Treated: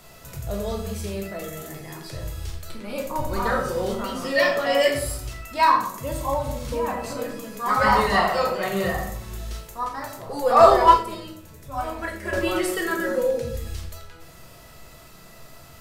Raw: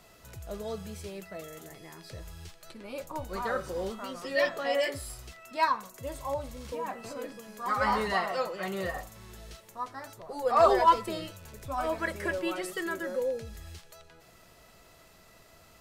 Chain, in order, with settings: high shelf 9400 Hz +6 dB; on a send at -1 dB: reverb RT60 0.65 s, pre-delay 14 ms; 10.7–12.33 on the sum: upward expander 1.5:1, over -33 dBFS; gain +6 dB

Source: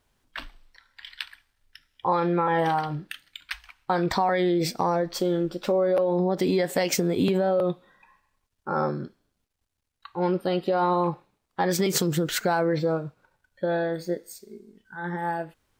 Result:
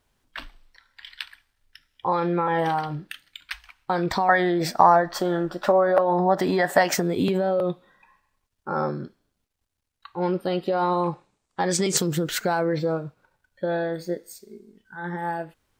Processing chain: 4.29–7.02 spectral gain 570–2000 Hz +11 dB; 10.8–11.97 synth low-pass 7900 Hz, resonance Q 2.4

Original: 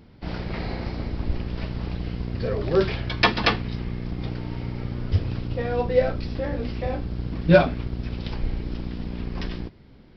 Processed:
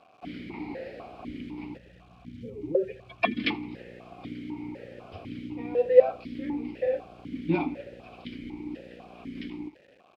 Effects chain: 1.77–3.4 spectral contrast raised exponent 2.1; requantised 8-bit, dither none; feedback echo 82 ms, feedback 57%, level -22 dB; vowel sequencer 4 Hz; gain +6 dB

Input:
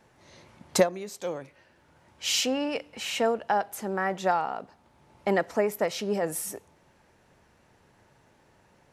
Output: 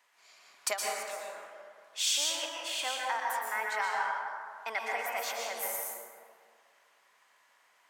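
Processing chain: HPF 1100 Hz 12 dB/oct; varispeed +13%; plate-style reverb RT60 2 s, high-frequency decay 0.4×, pre-delay 0.105 s, DRR -2.5 dB; gain -3 dB

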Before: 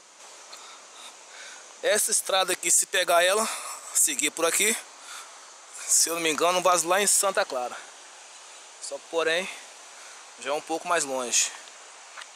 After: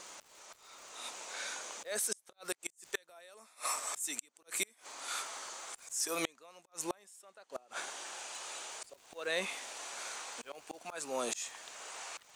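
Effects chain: auto swell 0.682 s; crackle 360/s -52 dBFS; flipped gate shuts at -21 dBFS, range -34 dB; gain +1.5 dB

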